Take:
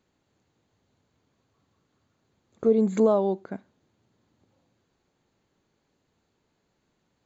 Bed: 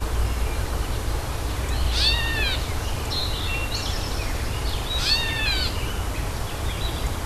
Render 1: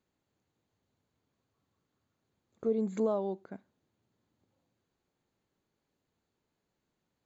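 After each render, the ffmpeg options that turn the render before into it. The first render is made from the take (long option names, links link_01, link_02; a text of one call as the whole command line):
ffmpeg -i in.wav -af "volume=-9.5dB" out.wav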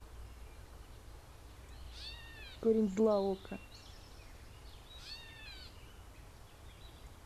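ffmpeg -i in.wav -i bed.wav -filter_complex "[1:a]volume=-27.5dB[link_01];[0:a][link_01]amix=inputs=2:normalize=0" out.wav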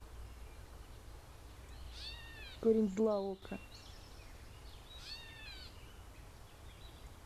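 ffmpeg -i in.wav -filter_complex "[0:a]asplit=2[link_01][link_02];[link_01]atrim=end=3.42,asetpts=PTS-STARTPTS,afade=type=out:start_time=2.69:duration=0.73:silence=0.398107[link_03];[link_02]atrim=start=3.42,asetpts=PTS-STARTPTS,afade=type=in:duration=0.004:curve=hsin:silence=0.398107[link_04];[link_03][link_04]concat=n=2:v=0:a=1" out.wav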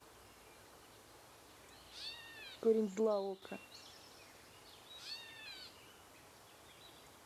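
ffmpeg -i in.wav -af "highpass=130,bass=frequency=250:gain=-7,treble=frequency=4000:gain=2" out.wav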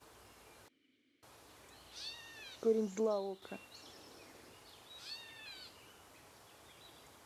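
ffmpeg -i in.wav -filter_complex "[0:a]asettb=1/sr,asplit=3[link_01][link_02][link_03];[link_01]atrim=end=0.684[link_04];[link_02]atrim=start=0.68:end=1.23,asetpts=PTS-STARTPTS,afade=type=in:duration=0.004:curve=qsin,afade=type=out:start_time=0.546:duration=0.004:curve=qsin,asplit=3[link_05][link_06][link_07];[link_05]bandpass=frequency=270:width_type=q:width=8,volume=0dB[link_08];[link_06]bandpass=frequency=2290:width_type=q:width=8,volume=-6dB[link_09];[link_07]bandpass=frequency=3010:width_type=q:width=8,volume=-9dB[link_10];[link_08][link_09][link_10]amix=inputs=3:normalize=0[link_11];[link_03]atrim=start=1.226[link_12];[link_04][link_11]acrossfade=duration=0.004:curve1=hsin:curve2=qsin[link_13];[link_13][link_12]acrossfade=duration=0.004:curve1=qsin:curve2=hsin,asettb=1/sr,asplit=3[link_14][link_15][link_16];[link_14]atrim=end=1.964[link_17];[link_15]atrim=start=1.96:end=3.18,asetpts=PTS-STARTPTS,afade=type=in:duration=0.004:curve=qsin,afade=type=out:start_time=1.216:duration=0.004:curve=qsin,equalizer=frequency=5900:width_type=o:width=0.28:gain=9[link_18];[link_16]atrim=start=3.176[link_19];[link_17][link_18]acrossfade=duration=0.004:curve1=hsin:curve2=qsin[link_20];[link_20][link_19]acrossfade=duration=0.004:curve1=qsin:curve2=hsin,asettb=1/sr,asplit=3[link_21][link_22][link_23];[link_21]atrim=end=3.824[link_24];[link_22]atrim=start=3.82:end=4.55,asetpts=PTS-STARTPTS,afade=type=in:duration=0.004:curve=qsin,afade=type=out:start_time=0.726:duration=0.004:curve=qsin,equalizer=frequency=330:width=1:gain=6.5[link_25];[link_23]atrim=start=4.546[link_26];[link_24][link_25]acrossfade=duration=0.004:curve1=hsin:curve2=qsin[link_27];[link_27][link_26]acrossfade=duration=0.004:curve1=qsin:curve2=hsin" out.wav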